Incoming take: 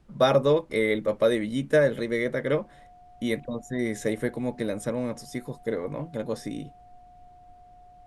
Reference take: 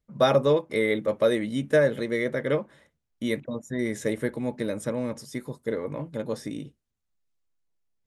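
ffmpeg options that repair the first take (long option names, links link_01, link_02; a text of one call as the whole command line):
ffmpeg -i in.wav -af "bandreject=frequency=720:width=30,agate=range=-21dB:threshold=-44dB" out.wav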